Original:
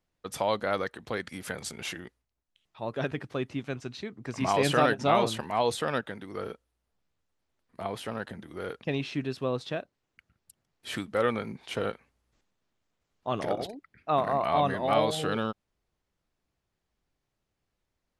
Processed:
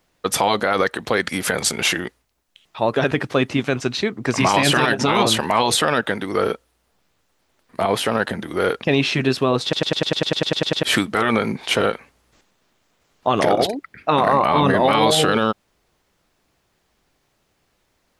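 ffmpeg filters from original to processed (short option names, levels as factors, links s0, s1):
-filter_complex "[0:a]asettb=1/sr,asplit=3[s0][s1][s2];[s0]atrim=end=14.394[s3];[s1]atrim=start=14.39:end=14.8,asetpts=PTS-STARTPTS,afade=t=in:d=0.004:c=qsin,afade=t=out:st=0.406:d=0.004:c=qsin,tiltshelf=f=970:g=3[s4];[s2]atrim=start=14.796[s5];[s3][s4]acrossfade=d=0.004:c1=hsin:c2=qsin[s6];[s6][s5]acrossfade=d=0.004:c1=qsin:c2=hsin,asplit=13[s7][s8][s9][s10][s11][s12][s13][s14][s15][s16][s17][s18][s19];[s7]atrim=end=9.732[s20];[s8]atrim=start=9.628:end=9.732[s21];[s9]atrim=start=9.628:end=9.732[s22];[s10]atrim=start=9.628:end=9.732[s23];[s11]atrim=start=9.628:end=9.732[s24];[s12]atrim=start=9.628:end=9.732[s25];[s13]atrim=start=9.628:end=9.732[s26];[s14]atrim=start=9.628:end=9.732[s27];[s15]atrim=start=9.628:end=9.732[s28];[s16]atrim=start=9.628:end=9.732[s29];[s17]atrim=start=9.628:end=9.732[s30];[s18]atrim=start=9.628:end=9.732[s31];[s19]atrim=start=10.828[s32];[s20][s21]acrossfade=d=0.004:c1=hsin:c2=hsin[s33];[s33][s22]acrossfade=d=0.004:c1=hsin:c2=hsin[s34];[s34][s23]acrossfade=d=0.004:c1=hsin:c2=hsin[s35];[s35][s24]acrossfade=d=0.004:c1=hsin:c2=hsin[s36];[s36][s25]acrossfade=d=0.004:c1=hsin:c2=hsin[s37];[s37][s26]acrossfade=d=0.004:c1=hsin:c2=hsin[s38];[s38][s27]acrossfade=d=0.004:c1=hsin:c2=hsin[s39];[s39][s28]acrossfade=d=0.004:c1=hsin:c2=hsin[s40];[s40][s29]acrossfade=d=0.004:c1=hsin:c2=hsin[s41];[s41][s30]acrossfade=d=0.004:c1=hsin:c2=hsin[s42];[s42][s31]acrossfade=d=0.004:c1=hsin:c2=hsin[s43];[s43][s32]acrossfade=d=0.004:c1=hsin:c2=hsin,lowshelf=f=170:g=-8.5,afftfilt=real='re*lt(hypot(re,im),0.282)':imag='im*lt(hypot(re,im),0.282)':win_size=1024:overlap=0.75,alimiter=level_in=14.1:limit=0.891:release=50:level=0:latency=1,volume=0.562"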